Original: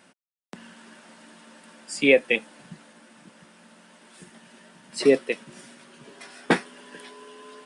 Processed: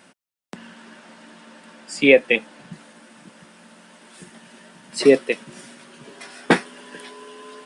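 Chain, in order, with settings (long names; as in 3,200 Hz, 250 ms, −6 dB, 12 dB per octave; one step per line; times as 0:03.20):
0:00.55–0:02.73: high-shelf EQ 9,300 Hz −12 dB
level +4.5 dB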